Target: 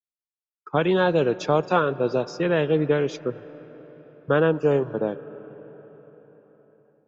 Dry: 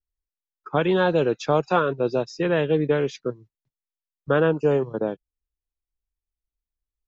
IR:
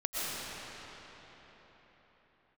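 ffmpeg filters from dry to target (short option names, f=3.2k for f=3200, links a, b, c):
-filter_complex "[0:a]agate=range=-33dB:threshold=-37dB:ratio=3:detection=peak,asplit=2[a][b];[1:a]atrim=start_sample=2205,lowpass=2.7k,adelay=84[c];[b][c]afir=irnorm=-1:irlink=0,volume=-24.5dB[d];[a][d]amix=inputs=2:normalize=0"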